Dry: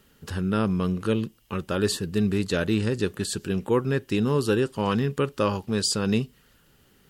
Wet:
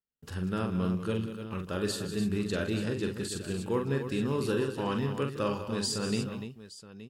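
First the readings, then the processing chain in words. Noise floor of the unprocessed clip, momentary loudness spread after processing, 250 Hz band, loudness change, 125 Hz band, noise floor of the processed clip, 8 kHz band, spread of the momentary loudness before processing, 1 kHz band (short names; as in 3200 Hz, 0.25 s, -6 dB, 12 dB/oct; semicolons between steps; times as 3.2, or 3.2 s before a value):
-61 dBFS, 7 LU, -6.0 dB, -6.0 dB, -6.0 dB, -50 dBFS, -6.5 dB, 6 LU, -6.0 dB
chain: gate -48 dBFS, range -34 dB; on a send: tapped delay 44/161/192/293/872 ms -5.5/-16.5/-11.5/-9.5/-15.5 dB; on the sum: gain -8 dB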